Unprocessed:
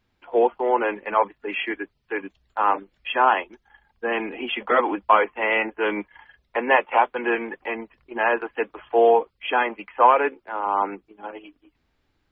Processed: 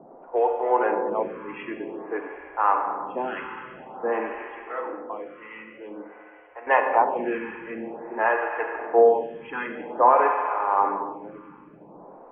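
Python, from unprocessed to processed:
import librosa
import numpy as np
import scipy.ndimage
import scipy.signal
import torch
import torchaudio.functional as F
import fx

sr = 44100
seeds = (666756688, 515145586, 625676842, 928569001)

y = fx.env_lowpass(x, sr, base_hz=970.0, full_db=-13.0)
y = scipy.signal.sosfilt(scipy.signal.butter(2, 1900.0, 'lowpass', fs=sr, output='sos'), y)
y = fx.dmg_noise_band(y, sr, seeds[0], low_hz=140.0, high_hz=850.0, level_db=-48.0)
y = fx.comb_fb(y, sr, f0_hz=100.0, decay_s=1.0, harmonics='odd', damping=0.0, mix_pct=80, at=(4.42, 6.67))
y = fx.rev_schroeder(y, sr, rt60_s=2.8, comb_ms=32, drr_db=2.5)
y = fx.stagger_phaser(y, sr, hz=0.5)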